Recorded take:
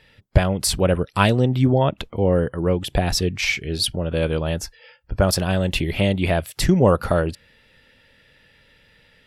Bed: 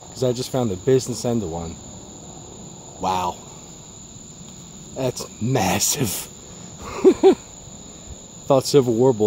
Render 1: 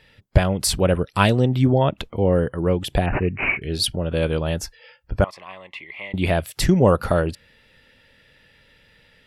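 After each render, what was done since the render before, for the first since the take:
0:03.06–0:03.62: bad sample-rate conversion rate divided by 8×, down none, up filtered
0:05.24–0:06.14: pair of resonant band-passes 1,500 Hz, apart 0.93 octaves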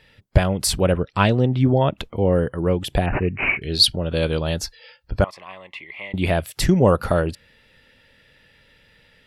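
0:00.92–0:01.68: high-frequency loss of the air 110 metres
0:03.32–0:05.23: parametric band 4,200 Hz +10.5 dB 0.53 octaves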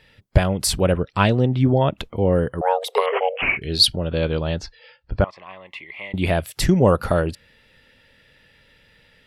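0:02.61–0:03.42: frequency shifter +380 Hz
0:04.08–0:05.67: high-frequency loss of the air 150 metres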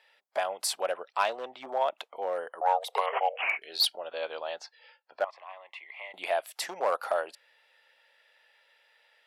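hard clipping −10 dBFS, distortion −16 dB
four-pole ladder high-pass 610 Hz, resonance 45%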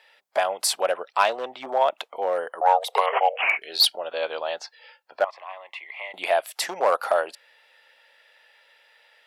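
level +7 dB

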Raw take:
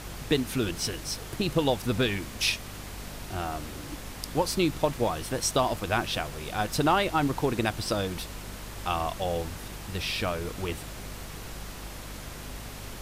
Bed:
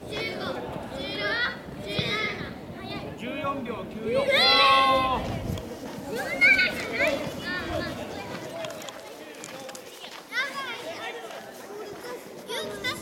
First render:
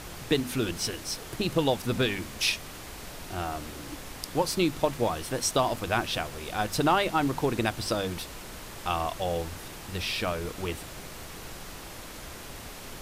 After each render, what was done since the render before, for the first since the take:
mains-hum notches 50/100/150/200/250 Hz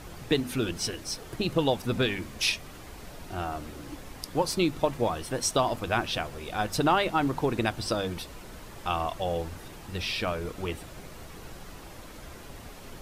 broadband denoise 7 dB, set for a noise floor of −43 dBFS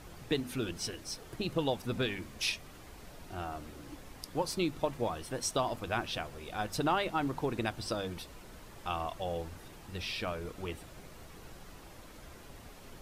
level −6.5 dB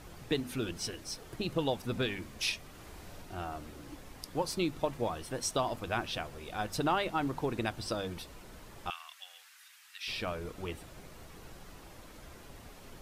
0:02.72–0:03.22: flutter between parallel walls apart 10.1 metres, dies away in 0.75 s
0:08.90–0:10.08: high-pass filter 1,500 Hz 24 dB per octave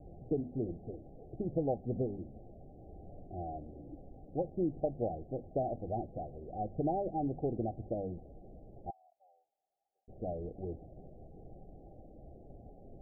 Chebyshev low-pass filter 800 Hz, order 10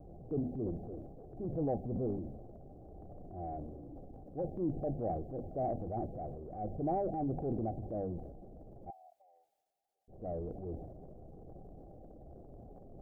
transient designer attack −7 dB, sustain +7 dB

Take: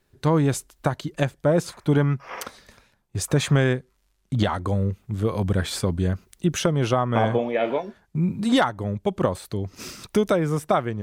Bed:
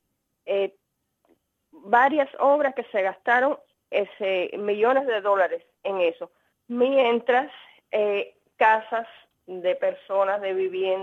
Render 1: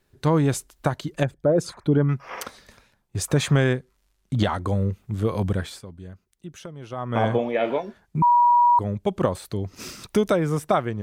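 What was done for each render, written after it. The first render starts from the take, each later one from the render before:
0:01.23–0:02.09: spectral envelope exaggerated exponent 1.5
0:05.45–0:07.26: duck −17 dB, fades 0.36 s
0:08.22–0:08.79: beep over 963 Hz −13 dBFS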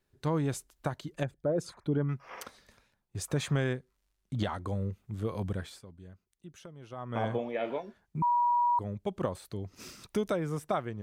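level −10 dB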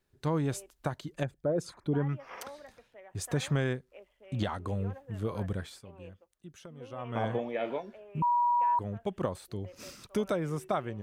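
mix in bed −28.5 dB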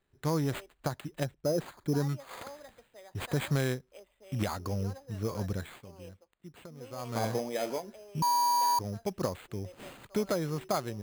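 sample-rate reduction 5,600 Hz, jitter 0%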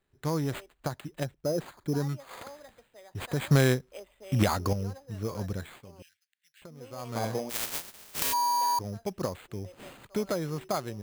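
0:03.51–0:04.73: clip gain +7.5 dB
0:06.02–0:06.62: elliptic high-pass filter 1,600 Hz
0:07.49–0:08.32: compressing power law on the bin magnitudes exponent 0.12

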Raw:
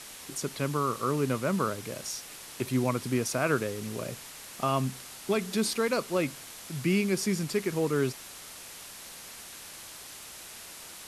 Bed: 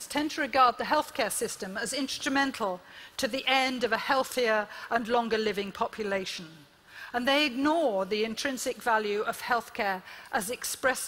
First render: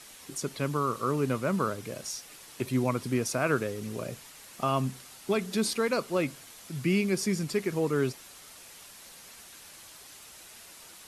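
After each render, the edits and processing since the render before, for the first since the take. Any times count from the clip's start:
broadband denoise 6 dB, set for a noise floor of −46 dBFS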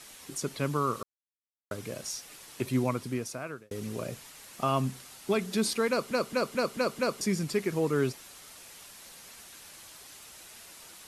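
0:01.03–0:01.71: silence
0:02.76–0:03.71: fade out
0:05.89: stutter in place 0.22 s, 6 plays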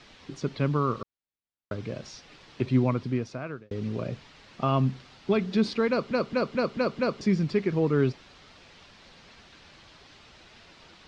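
low-pass filter 4,600 Hz 24 dB per octave
low-shelf EQ 310 Hz +8 dB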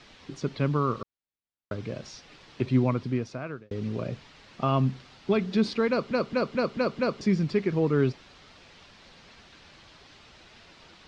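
no processing that can be heard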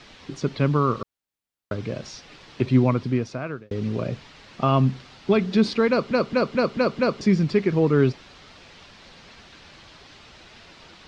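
level +5 dB

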